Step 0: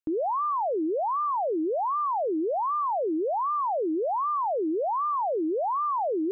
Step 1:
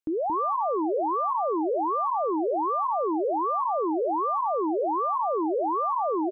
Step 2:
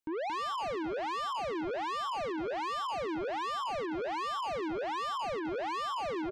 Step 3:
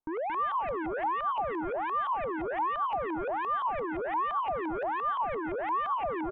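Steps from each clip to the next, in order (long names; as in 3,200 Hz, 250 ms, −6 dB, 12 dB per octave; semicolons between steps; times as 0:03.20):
single-tap delay 226 ms −6 dB
soft clipping −33.5 dBFS, distortion −8 dB
downsampling to 8,000 Hz; low-shelf EQ 61 Hz +10.5 dB; auto-filter low-pass saw up 5.8 Hz 810–2,200 Hz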